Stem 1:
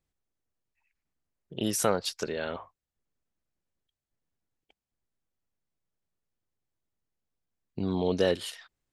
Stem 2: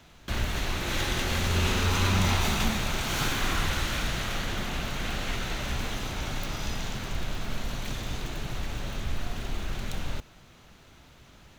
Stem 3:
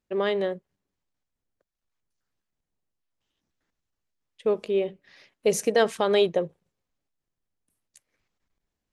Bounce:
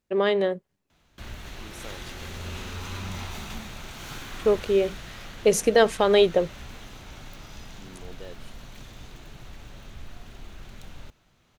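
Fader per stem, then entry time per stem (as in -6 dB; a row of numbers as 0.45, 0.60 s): -18.0, -10.5, +3.0 dB; 0.00, 0.90, 0.00 s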